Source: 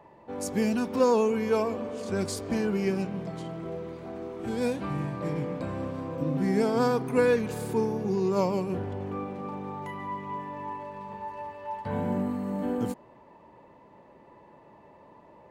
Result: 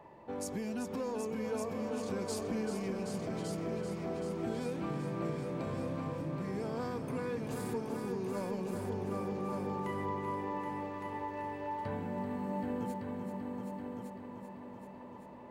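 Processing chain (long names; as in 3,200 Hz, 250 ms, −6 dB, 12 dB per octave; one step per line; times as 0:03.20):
in parallel at −7 dB: soft clipping −26 dBFS, distortion −10 dB
on the sum: downward compressor 10 to 1, threshold −31 dBFS, peak gain reduction 14.5 dB
echo machine with several playback heads 387 ms, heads all three, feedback 49%, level −8.5 dB
level −4.5 dB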